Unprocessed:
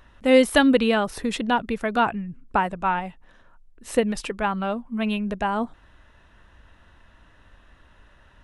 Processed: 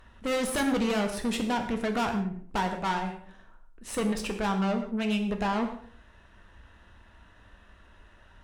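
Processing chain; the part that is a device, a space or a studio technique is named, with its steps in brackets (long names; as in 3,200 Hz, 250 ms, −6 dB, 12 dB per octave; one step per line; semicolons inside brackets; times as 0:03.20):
rockabilly slapback (tube saturation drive 26 dB, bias 0.55; tape delay 107 ms, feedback 31%, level −9 dB, low-pass 1,100 Hz)
reverb whose tail is shaped and stops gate 200 ms falling, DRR 4.5 dB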